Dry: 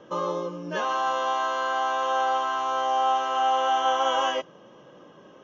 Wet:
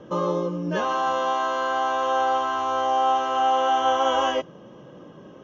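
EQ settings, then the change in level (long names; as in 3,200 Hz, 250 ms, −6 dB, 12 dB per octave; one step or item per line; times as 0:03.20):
low-shelf EQ 360 Hz +12 dB
0.0 dB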